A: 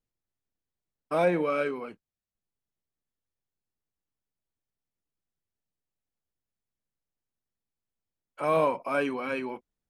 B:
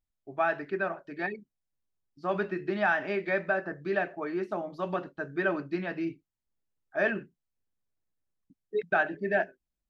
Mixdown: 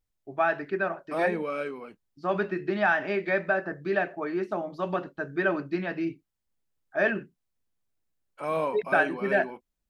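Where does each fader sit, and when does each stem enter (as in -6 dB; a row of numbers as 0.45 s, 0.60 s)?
-4.0 dB, +2.5 dB; 0.00 s, 0.00 s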